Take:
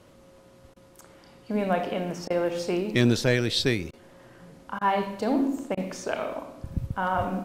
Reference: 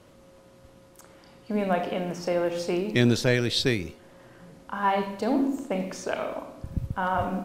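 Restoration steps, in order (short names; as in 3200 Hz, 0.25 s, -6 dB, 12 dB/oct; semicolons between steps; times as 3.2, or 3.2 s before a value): clip repair -10 dBFS; interpolate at 0.74/2.28/3.91/4.79/5.75, 21 ms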